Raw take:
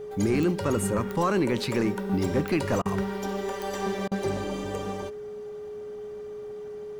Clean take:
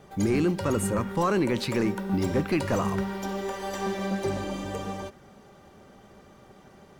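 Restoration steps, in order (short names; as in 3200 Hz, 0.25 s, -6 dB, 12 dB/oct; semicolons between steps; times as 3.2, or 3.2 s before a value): de-click; notch 420 Hz, Q 30; interpolate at 2.82/4.08, 34 ms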